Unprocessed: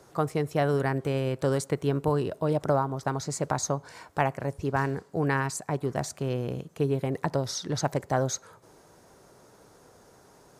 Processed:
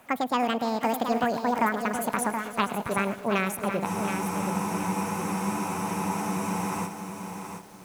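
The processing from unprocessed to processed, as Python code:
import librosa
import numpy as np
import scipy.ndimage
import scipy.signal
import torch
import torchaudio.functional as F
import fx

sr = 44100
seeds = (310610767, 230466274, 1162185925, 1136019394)

p1 = fx.speed_glide(x, sr, from_pct=175, to_pct=95)
p2 = p1 + fx.echo_heads(p1, sr, ms=106, heads='first and third', feedback_pct=47, wet_db=-16.5, dry=0)
p3 = fx.spec_freeze(p2, sr, seeds[0], at_s=3.87, hold_s=3.0)
y = fx.echo_crushed(p3, sr, ms=724, feedback_pct=35, bits=8, wet_db=-7)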